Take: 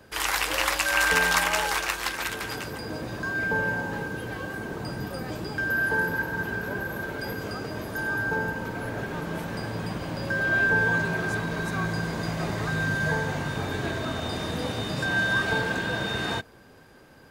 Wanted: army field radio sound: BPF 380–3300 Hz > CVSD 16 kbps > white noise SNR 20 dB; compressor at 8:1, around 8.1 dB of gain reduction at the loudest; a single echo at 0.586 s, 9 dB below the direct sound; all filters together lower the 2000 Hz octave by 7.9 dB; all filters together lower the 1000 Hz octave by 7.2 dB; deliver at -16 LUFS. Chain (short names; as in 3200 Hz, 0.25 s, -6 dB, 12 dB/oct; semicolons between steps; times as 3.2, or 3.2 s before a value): bell 1000 Hz -7 dB; bell 2000 Hz -7.5 dB; compressor 8:1, threshold -32 dBFS; BPF 380–3300 Hz; echo 0.586 s -9 dB; CVSD 16 kbps; white noise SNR 20 dB; gain +23.5 dB